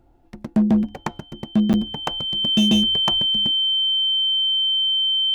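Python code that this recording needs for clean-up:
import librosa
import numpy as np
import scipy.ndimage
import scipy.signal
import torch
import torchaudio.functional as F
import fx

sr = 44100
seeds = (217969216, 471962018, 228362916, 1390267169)

y = fx.fix_declip(x, sr, threshold_db=-12.0)
y = fx.notch(y, sr, hz=3100.0, q=30.0)
y = fx.fix_interpolate(y, sr, at_s=(1.73,), length_ms=9.0)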